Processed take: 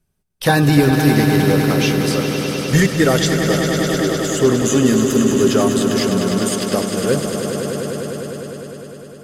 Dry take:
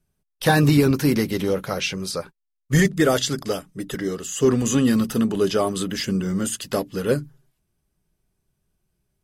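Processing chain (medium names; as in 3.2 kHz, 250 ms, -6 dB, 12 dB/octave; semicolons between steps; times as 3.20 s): echo with a slow build-up 101 ms, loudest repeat 5, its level -9 dB; trim +3 dB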